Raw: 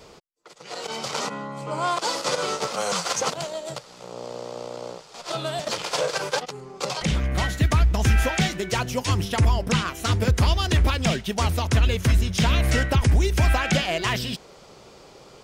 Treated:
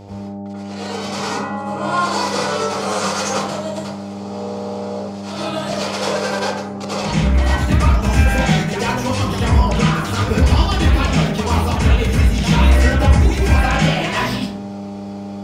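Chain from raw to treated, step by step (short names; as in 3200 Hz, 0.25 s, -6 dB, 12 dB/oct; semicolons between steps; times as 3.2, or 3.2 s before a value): high shelf 7100 Hz -4 dB; de-hum 59.59 Hz, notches 31; buzz 100 Hz, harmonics 9, -35 dBFS -4 dB/oct; plate-style reverb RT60 0.64 s, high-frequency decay 0.5×, pre-delay 75 ms, DRR -9 dB; gain -3 dB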